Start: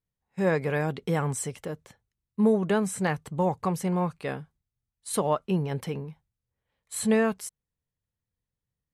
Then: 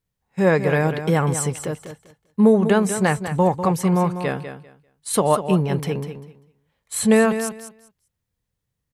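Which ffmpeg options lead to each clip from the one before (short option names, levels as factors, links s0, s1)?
-af "aecho=1:1:197|394|591:0.316|0.0601|0.0114,volume=2.37"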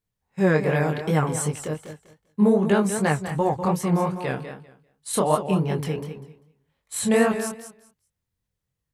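-af "flanger=delay=19:depth=7.1:speed=2.6"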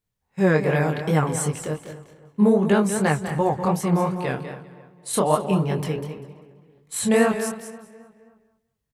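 -filter_complex "[0:a]asplit=2[s0][s1];[s1]adelay=264,lowpass=f=3200:p=1,volume=0.133,asplit=2[s2][s3];[s3]adelay=264,lowpass=f=3200:p=1,volume=0.48,asplit=2[s4][s5];[s5]adelay=264,lowpass=f=3200:p=1,volume=0.48,asplit=2[s6][s7];[s7]adelay=264,lowpass=f=3200:p=1,volume=0.48[s8];[s0][s2][s4][s6][s8]amix=inputs=5:normalize=0,volume=1.12"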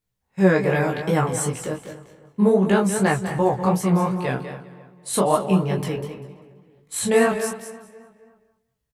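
-filter_complex "[0:a]asplit=2[s0][s1];[s1]adelay=16,volume=0.562[s2];[s0][s2]amix=inputs=2:normalize=0"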